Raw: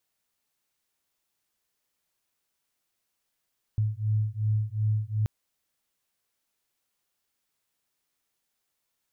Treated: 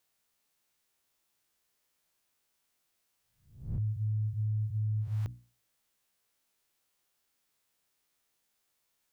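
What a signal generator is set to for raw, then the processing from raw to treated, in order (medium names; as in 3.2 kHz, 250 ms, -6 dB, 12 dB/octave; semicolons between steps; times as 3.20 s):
beating tones 106 Hz, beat 2.7 Hz, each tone -27 dBFS 1.48 s
reverse spectral sustain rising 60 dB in 0.49 s; hum notches 60/120/180/240/300 Hz; peak limiter -27.5 dBFS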